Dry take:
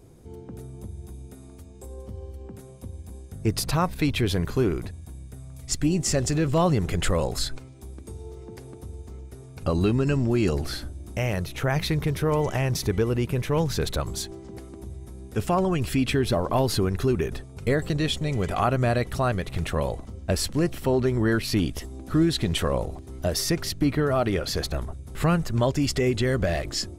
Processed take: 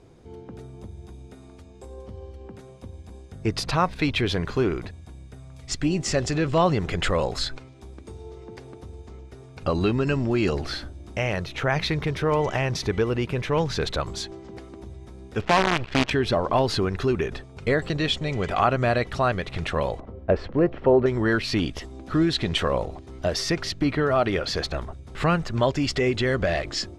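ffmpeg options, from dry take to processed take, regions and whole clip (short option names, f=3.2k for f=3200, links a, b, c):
-filter_complex "[0:a]asettb=1/sr,asplit=3[a][b][c];[a]atrim=end=15.414[d];[b]atrim=start=15.41:end=16.11,asetpts=PTS-STARTPTS,afade=t=in:d=0.004:c=qsin,afade=t=out:st=0.696:d=0.004:c=qsin,acrusher=bits=4:dc=4:mix=0:aa=0.000001,adynamicsmooth=sensitivity=6.5:basefreq=1.5k[e];[c]atrim=start=16.106[f];[d][e]acrossfade=d=0.004:c1=hsin:c2=qsin[g];[g][f]acrossfade=d=0.004:c1=qsin:c2=hsin,asettb=1/sr,asplit=3[h][i][j];[h]atrim=end=20.004[k];[i]atrim=start=20:end=21.06,asetpts=PTS-STARTPTS,afade=t=in:d=0.004:c=qsin,afade=t=out:st=1.056:d=0.004:c=qsin,lowpass=1.6k,equalizer=f=480:w=1.4:g=6.5[l];[j]atrim=start=21.056[m];[k][l]acrossfade=d=0.004:c1=hsin:c2=qsin[n];[n][m]acrossfade=d=0.004:c1=qsin:c2=hsin,lowpass=4.6k,lowshelf=f=390:g=-7.5,volume=4.5dB"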